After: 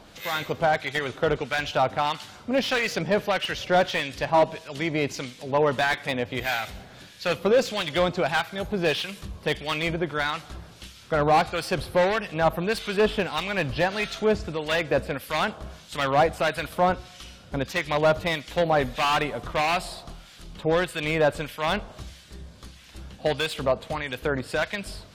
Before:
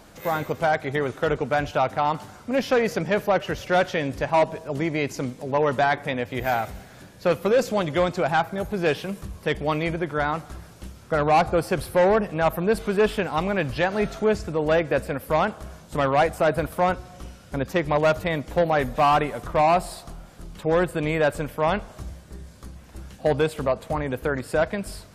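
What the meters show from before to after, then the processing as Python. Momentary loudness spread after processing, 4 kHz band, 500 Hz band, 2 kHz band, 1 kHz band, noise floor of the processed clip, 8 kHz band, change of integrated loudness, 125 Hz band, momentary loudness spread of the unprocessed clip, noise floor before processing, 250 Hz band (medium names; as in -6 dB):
13 LU, +6.0 dB, -2.5 dB, +1.0 dB, -2.5 dB, -49 dBFS, +1.5 dB, -1.5 dB, -3.0 dB, 14 LU, -47 dBFS, -3.0 dB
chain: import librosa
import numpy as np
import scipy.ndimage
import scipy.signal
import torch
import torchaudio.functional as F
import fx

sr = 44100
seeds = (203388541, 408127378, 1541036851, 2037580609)

y = fx.peak_eq(x, sr, hz=3500.0, db=12.5, octaves=1.6)
y = fx.harmonic_tremolo(y, sr, hz=1.6, depth_pct=70, crossover_hz=1300.0)
y = fx.slew_limit(y, sr, full_power_hz=190.0)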